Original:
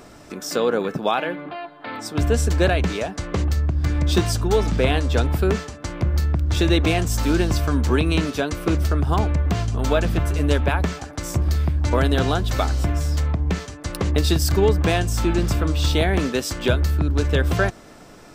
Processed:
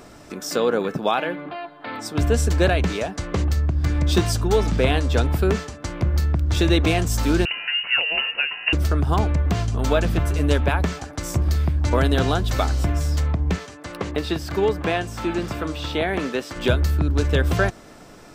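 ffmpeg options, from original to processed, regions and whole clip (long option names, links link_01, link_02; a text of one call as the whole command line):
ffmpeg -i in.wav -filter_complex "[0:a]asettb=1/sr,asplit=3[link_01][link_02][link_03];[link_01]atrim=end=7.454[link_04];[link_02]atrim=start=7.45:end=8.73,asetpts=PTS-STARTPTS,afade=type=in:duration=0.004:curve=qsin,afade=type=out:start_time=1.276:duration=0.004:curve=qsin,highpass=frequency=190:width=0.5412,highpass=frequency=190:width=1.3066,lowpass=frequency=2600:width_type=q:width=0.5098,lowpass=frequency=2600:width_type=q:width=0.6013,lowpass=frequency=2600:width_type=q:width=0.9,lowpass=frequency=2600:width_type=q:width=2.563,afreqshift=-3100[link_05];[link_03]atrim=start=8.726[link_06];[link_04][link_05]acrossfade=duration=0.004:curve1=hsin:curve2=qsin[link_07];[link_07][link_06]acrossfade=duration=0.004:curve1=qsin:curve2=hsin,asettb=1/sr,asplit=3[link_08][link_09][link_10];[link_08]atrim=end=13.564[link_11];[link_09]atrim=start=13.56:end=16.56,asetpts=PTS-STARTPTS,afade=type=in:duration=0.004:curve=qsin,afade=type=out:start_time=2.996:duration=0.004:curve=qsin,acrossover=split=3400[link_12][link_13];[link_13]acompressor=threshold=-43dB:ratio=4:attack=1:release=60[link_14];[link_12][link_14]amix=inputs=2:normalize=0,highpass=frequency=290:poles=1[link_15];[link_10]atrim=start=16.556[link_16];[link_11][link_15]acrossfade=duration=0.004:curve1=hsin:curve2=qsin[link_17];[link_17][link_16]acrossfade=duration=0.004:curve1=qsin:curve2=hsin" out.wav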